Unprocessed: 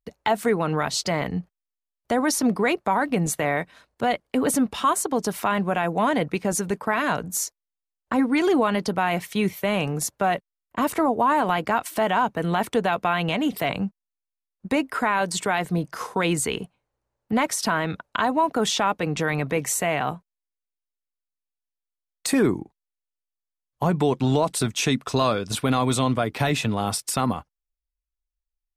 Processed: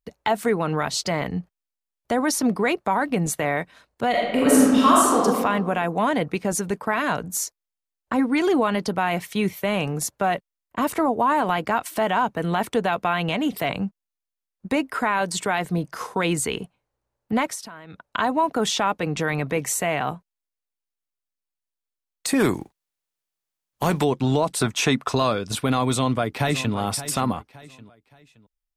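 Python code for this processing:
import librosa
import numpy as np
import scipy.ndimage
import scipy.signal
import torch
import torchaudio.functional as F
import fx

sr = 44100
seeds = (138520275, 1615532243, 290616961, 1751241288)

y = fx.reverb_throw(x, sr, start_s=4.1, length_s=1.14, rt60_s=1.5, drr_db=-5.5)
y = fx.spec_flatten(y, sr, power=0.7, at=(22.39, 24.03), fade=0.02)
y = fx.peak_eq(y, sr, hz=1000.0, db=8.0, octaves=2.0, at=(24.58, 25.15))
y = fx.echo_throw(y, sr, start_s=25.9, length_s=0.85, ms=570, feedback_pct=35, wet_db=-13.0)
y = fx.edit(y, sr, fx.fade_down_up(start_s=17.38, length_s=0.8, db=-18.0, fade_s=0.31), tone=tone)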